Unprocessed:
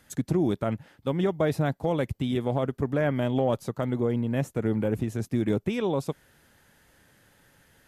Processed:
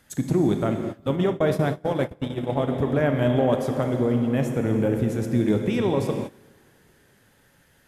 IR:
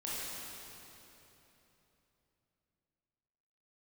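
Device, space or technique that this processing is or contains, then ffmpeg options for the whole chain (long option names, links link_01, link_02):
keyed gated reverb: -filter_complex "[0:a]asplit=3[link_01][link_02][link_03];[1:a]atrim=start_sample=2205[link_04];[link_02][link_04]afir=irnorm=-1:irlink=0[link_05];[link_03]apad=whole_len=347167[link_06];[link_05][link_06]sidechaingate=range=-21dB:threshold=-47dB:ratio=16:detection=peak,volume=-4dB[link_07];[link_01][link_07]amix=inputs=2:normalize=0,asplit=3[link_08][link_09][link_10];[link_08]afade=type=out:start_time=1.15:duration=0.02[link_11];[link_09]agate=range=-26dB:threshold=-22dB:ratio=16:detection=peak,afade=type=in:start_time=1.15:duration=0.02,afade=type=out:start_time=2.66:duration=0.02[link_12];[link_10]afade=type=in:start_time=2.66:duration=0.02[link_13];[link_11][link_12][link_13]amix=inputs=3:normalize=0"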